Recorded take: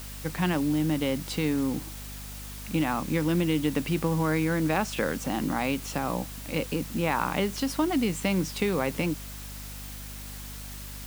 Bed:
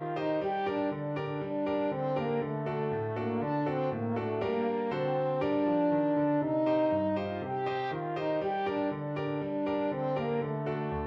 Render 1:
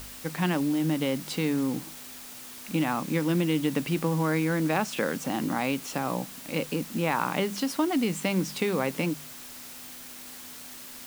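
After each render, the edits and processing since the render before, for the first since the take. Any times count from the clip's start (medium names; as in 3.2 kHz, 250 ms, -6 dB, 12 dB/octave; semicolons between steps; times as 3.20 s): de-hum 50 Hz, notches 4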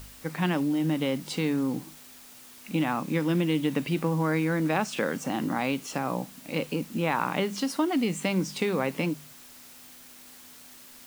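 noise print and reduce 6 dB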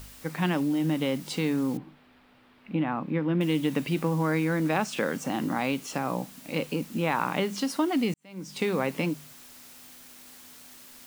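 1.77–3.41 s: distance through air 440 m; 8.14–8.64 s: fade in quadratic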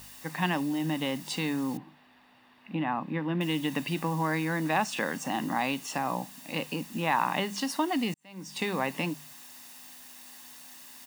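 high-pass 290 Hz 6 dB/octave; comb 1.1 ms, depth 47%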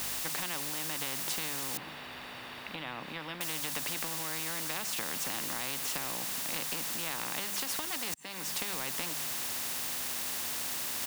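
compression 2.5:1, threshold -32 dBFS, peak gain reduction 8 dB; spectrum-flattening compressor 4:1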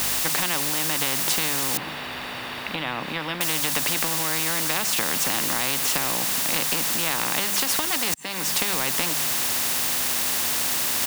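trim +11.5 dB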